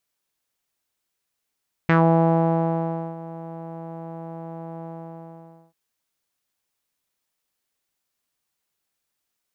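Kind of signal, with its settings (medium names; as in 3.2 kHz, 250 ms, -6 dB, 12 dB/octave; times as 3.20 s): synth note saw E3 12 dB/octave, low-pass 790 Hz, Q 2.9, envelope 1.5 oct, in 0.14 s, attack 1.7 ms, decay 1.26 s, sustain -20 dB, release 0.88 s, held 2.96 s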